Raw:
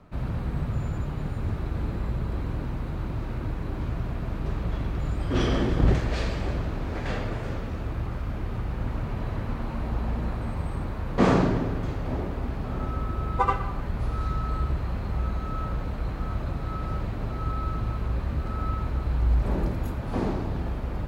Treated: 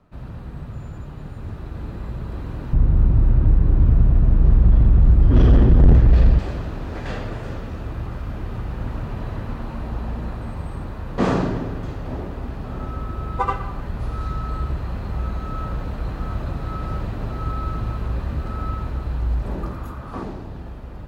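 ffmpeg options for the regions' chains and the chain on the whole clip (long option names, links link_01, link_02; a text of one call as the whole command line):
ffmpeg -i in.wav -filter_complex "[0:a]asettb=1/sr,asplit=3[link_01][link_02][link_03];[link_01]atrim=end=2.734[link_04];[link_02]atrim=start=2.73:end=6.39,asetpts=PTS-STARTPTS,afade=type=in:duration=0.004:curve=qsin,afade=type=out:start_time=3.656:duration=0.004:curve=qsin,aemphasis=mode=reproduction:type=riaa,asoftclip=type=hard:threshold=-8.5dB[link_05];[link_03]atrim=start=6.386[link_06];[link_04][link_05]acrossfade=duration=0.004:curve1=hsin:curve2=qsin[link_07];[link_07][link_06]acrossfade=duration=0.004:curve1=qsin:curve2=hsin,asettb=1/sr,asplit=3[link_08][link_09][link_10];[link_08]atrim=end=19.634[link_11];[link_09]atrim=start=19.63:end=20.23,asetpts=PTS-STARTPTS,afade=type=in:duration=0.004:curve=qsin,afade=type=out:start_time=0.596:duration=0.004:curve=qsin,equalizer=frequency=1200:width=3:gain=11.5,asplit=2[link_12][link_13];[link_13]adelay=15,volume=-12.5dB[link_14];[link_12][link_14]amix=inputs=2:normalize=0,atrim=end_sample=26460[link_15];[link_10]atrim=start=20.226[link_16];[link_11][link_15]acrossfade=duration=0.004:curve1=hsin:curve2=qsin[link_17];[link_17][link_16]acrossfade=duration=0.004:curve1=qsin:curve2=hsin,bandreject=frequency=2200:width=16,dynaudnorm=framelen=130:gausssize=31:maxgain=8.5dB,volume=-5dB" out.wav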